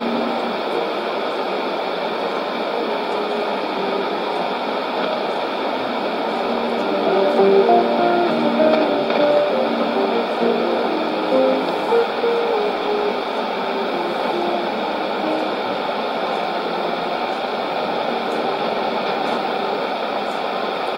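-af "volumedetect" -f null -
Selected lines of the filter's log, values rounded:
mean_volume: -19.8 dB
max_volume: -3.2 dB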